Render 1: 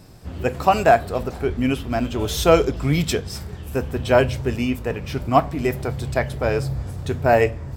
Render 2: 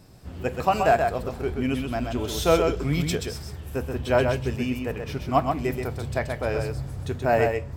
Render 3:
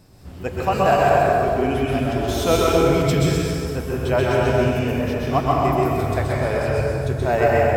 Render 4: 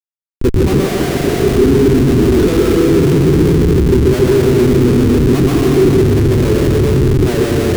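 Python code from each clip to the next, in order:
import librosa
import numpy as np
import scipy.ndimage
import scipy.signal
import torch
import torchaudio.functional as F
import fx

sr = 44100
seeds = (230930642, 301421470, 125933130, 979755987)

y1 = x + 10.0 ** (-5.0 / 20.0) * np.pad(x, (int(129 * sr / 1000.0), 0))[:len(x)]
y1 = y1 * 10.0 ** (-5.5 / 20.0)
y2 = fx.rev_plate(y1, sr, seeds[0], rt60_s=2.6, hf_ratio=0.6, predelay_ms=110, drr_db=-4.5)
y3 = fx.schmitt(y2, sr, flips_db=-25.0)
y3 = fx.low_shelf_res(y3, sr, hz=490.0, db=8.5, q=3.0)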